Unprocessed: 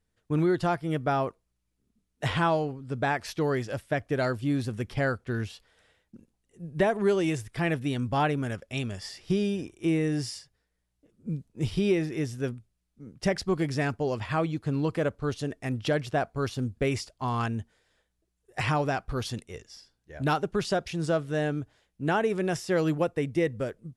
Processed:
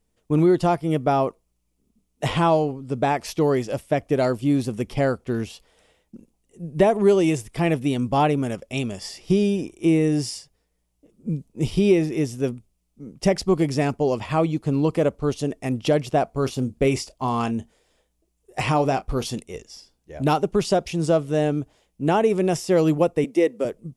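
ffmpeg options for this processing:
-filter_complex "[0:a]asettb=1/sr,asplit=3[s0][s1][s2];[s0]atrim=end=16.294[s3];[s1]atrim=start=16.29:end=19.38,asetpts=PTS-STARTPTS,afade=t=in:d=0.004:c=qsin,afade=t=out:st=3.086:d=0.004:c=qsin,asplit=2[s4][s5];[s5]adelay=30,volume=0.2[s6];[s4][s6]amix=inputs=2:normalize=0,atrim=end_sample=136269[s7];[s2]atrim=start=19.376[s8];[s3][s7]acrossfade=d=0.004:c1=hsin:c2=qsin[s9];[s9][s8]acrossfade=d=0.004:c1=qsin:c2=hsin,asettb=1/sr,asplit=3[s10][s11][s12];[s10]atrim=end=23.244[s13];[s11]atrim=start=23.24:end=23.65,asetpts=PTS-STARTPTS,afade=t=in:d=0.004:c=qsin,afade=t=out:st=0.406:d=0.004:c=qsin,highpass=f=250:w=0.5412,highpass=f=250:w=1.3066[s14];[s12]atrim=start=23.646[s15];[s13][s14]acrossfade=d=0.004:c1=hsin:c2=qsin[s16];[s16][s15]acrossfade=d=0.004:c1=qsin:c2=hsin,equalizer=f=100:t=o:w=0.67:g=-10,equalizer=f=1600:t=o:w=0.67:g=-11,equalizer=f=4000:t=o:w=0.67:g=-5,volume=2.51"

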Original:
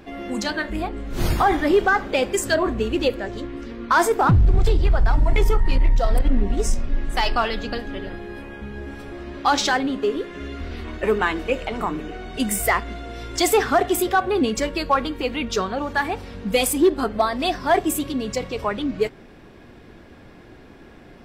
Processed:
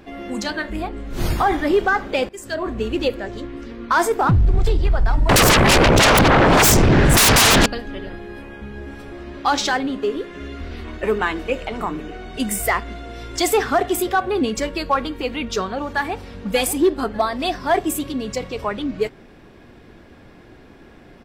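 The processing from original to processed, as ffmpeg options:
-filter_complex "[0:a]asettb=1/sr,asplit=3[s0][s1][s2];[s0]atrim=end=5.294[s3];[s1]atrim=start=5.29:end=7.66,asetpts=PTS-STARTPTS,afade=t=in:d=0.004:c=qsin,afade=t=out:st=2.366:d=0.004:c=qsin,aeval=exprs='0.335*sin(PI/2*10*val(0)/0.335)':c=same[s4];[s2]atrim=start=7.656[s5];[s3][s4]acrossfade=d=0.004:c1=hsin:c2=qsin[s6];[s6][s5]acrossfade=d=0.004:c1=qsin:c2=hsin,asplit=2[s7][s8];[s8]afade=t=in:st=15.86:d=0.01,afade=t=out:st=16.35:d=0.01,aecho=0:1:590|1180|1770:0.266073|0.0798218|0.0239465[s9];[s7][s9]amix=inputs=2:normalize=0,asplit=2[s10][s11];[s10]atrim=end=2.29,asetpts=PTS-STARTPTS,afade=t=out:st=2.286:d=0.004:c=hsin:silence=0.1[s12];[s11]atrim=start=2.29,asetpts=PTS-STARTPTS,afade=t=in:d=0.57:silence=0.1[s13];[s12][s13]concat=n=2:v=0:a=1"

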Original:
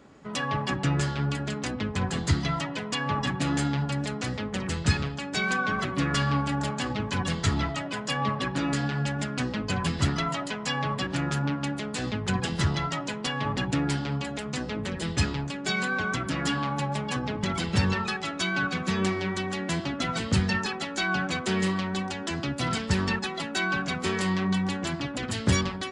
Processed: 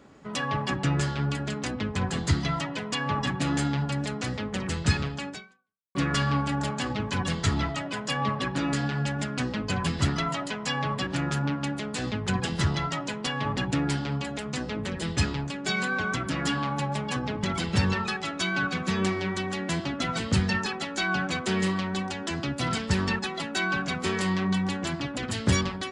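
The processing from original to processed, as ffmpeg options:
-filter_complex "[0:a]asplit=2[s0][s1];[s0]atrim=end=5.95,asetpts=PTS-STARTPTS,afade=t=out:st=5.29:d=0.66:c=exp[s2];[s1]atrim=start=5.95,asetpts=PTS-STARTPTS,afade=t=in:d=0.004:c=hsin[s3];[s2][s3]concat=n=2:v=0:a=1"

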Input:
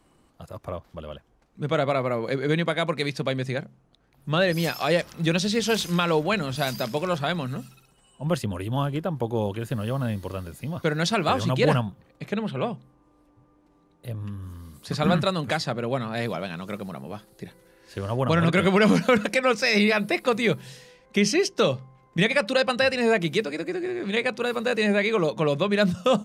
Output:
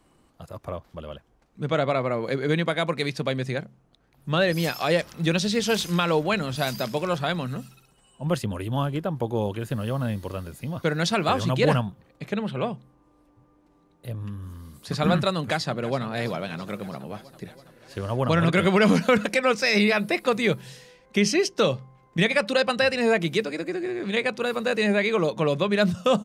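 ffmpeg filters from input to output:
-filter_complex "[0:a]asettb=1/sr,asplit=3[s0][s1][s2];[s0]atrim=end=1.654[s3];[s1]atrim=start=1.65:end=2.19,asetpts=PTS-STARTPTS,afade=t=in:d=0.004:c=qsin,afade=t=out:st=0.536:d=0.004:c=qsin,lowpass=8600[s4];[s2]atrim=start=2.186[s5];[s3][s4]acrossfade=d=0.004:c1=hsin:c2=qsin[s6];[s6][s5]acrossfade=d=0.004:c1=qsin:c2=hsin,asplit=2[s7][s8];[s8]afade=t=in:st=15.34:d=0.01,afade=t=out:st=15.99:d=0.01,aecho=0:1:330|660|990|1320|1650|1980|2310|2640|2970|3300:0.158489|0.118867|0.0891502|0.0668627|0.050147|0.0376103|0.0282077|0.0211558|0.0158668|0.0119001[s9];[s7][s9]amix=inputs=2:normalize=0"

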